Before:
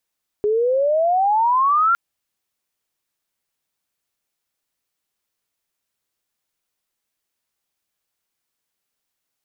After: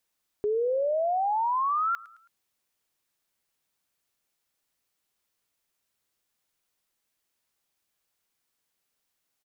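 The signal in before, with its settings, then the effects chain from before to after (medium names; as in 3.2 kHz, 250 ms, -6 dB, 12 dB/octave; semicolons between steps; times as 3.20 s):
sweep logarithmic 410 Hz -> 1.4 kHz -15.5 dBFS -> -13 dBFS 1.51 s
peak limiter -23 dBFS; feedback delay 108 ms, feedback 45%, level -21 dB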